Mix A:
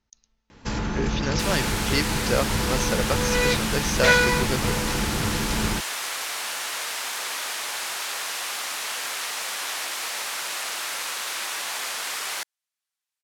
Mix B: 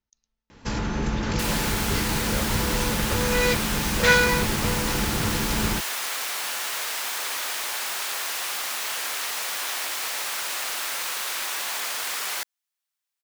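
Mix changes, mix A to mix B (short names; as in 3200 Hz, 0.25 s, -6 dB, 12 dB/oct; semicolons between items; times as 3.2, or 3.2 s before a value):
speech -11.0 dB; master: remove LPF 12000 Hz 12 dB/oct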